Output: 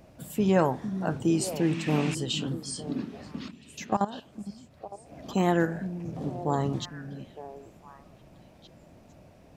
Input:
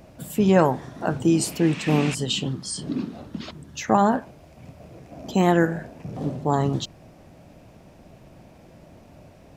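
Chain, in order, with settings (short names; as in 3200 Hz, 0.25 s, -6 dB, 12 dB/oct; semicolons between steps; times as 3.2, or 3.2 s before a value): 3.48–5.08 level quantiser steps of 17 dB; delay with a stepping band-pass 0.455 s, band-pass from 200 Hz, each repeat 1.4 oct, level -7.5 dB; gain -5.5 dB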